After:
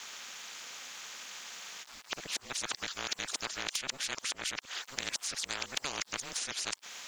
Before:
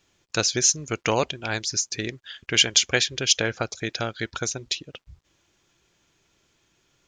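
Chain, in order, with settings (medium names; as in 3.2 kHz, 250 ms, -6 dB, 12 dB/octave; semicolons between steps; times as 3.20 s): reverse the whole clip; high-pass 970 Hz 12 dB/octave; compression, threshold -30 dBFS, peak gain reduction 16 dB; ring modulator 140 Hz; spectrum-flattening compressor 4:1; trim +2.5 dB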